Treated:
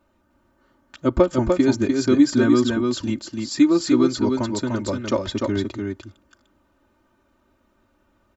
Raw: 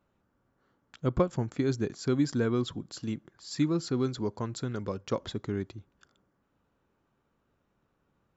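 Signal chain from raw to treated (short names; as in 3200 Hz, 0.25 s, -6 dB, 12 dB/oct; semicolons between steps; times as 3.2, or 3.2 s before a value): comb 3.3 ms, depth 93%; echo 0.298 s -4 dB; gain +7 dB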